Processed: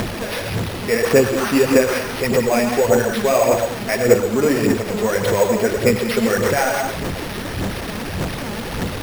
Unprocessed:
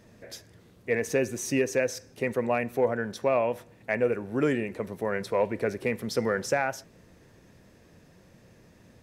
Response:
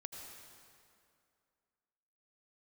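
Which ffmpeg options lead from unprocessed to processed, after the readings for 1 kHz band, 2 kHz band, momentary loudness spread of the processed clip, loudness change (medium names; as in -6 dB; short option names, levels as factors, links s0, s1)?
+11.0 dB, +10.5 dB, 10 LU, +10.0 dB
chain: -filter_complex "[0:a]aeval=exprs='val(0)+0.5*0.0316*sgn(val(0))':c=same[s0];[1:a]atrim=start_sample=2205,afade=t=out:st=0.28:d=0.01,atrim=end_sample=12789[s1];[s0][s1]afir=irnorm=-1:irlink=0,asplit=2[s2][s3];[s3]acompressor=mode=upward:threshold=0.0316:ratio=2.5,volume=0.708[s4];[s2][s4]amix=inputs=2:normalize=0,aphaser=in_gain=1:out_gain=1:delay=4.9:decay=0.54:speed=1.7:type=sinusoidal,acrusher=samples=6:mix=1:aa=0.000001,volume=1.88"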